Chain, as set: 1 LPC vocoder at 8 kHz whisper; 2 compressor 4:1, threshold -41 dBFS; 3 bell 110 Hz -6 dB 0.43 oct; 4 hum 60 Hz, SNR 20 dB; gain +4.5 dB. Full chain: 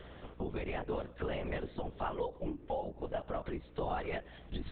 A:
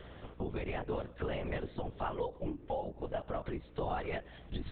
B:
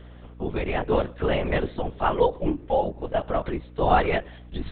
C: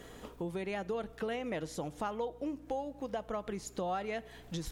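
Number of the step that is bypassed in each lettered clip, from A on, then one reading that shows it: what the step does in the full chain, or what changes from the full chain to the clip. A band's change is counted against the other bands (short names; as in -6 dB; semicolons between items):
3, 125 Hz band +2.0 dB; 2, mean gain reduction 10.5 dB; 1, 125 Hz band -3.0 dB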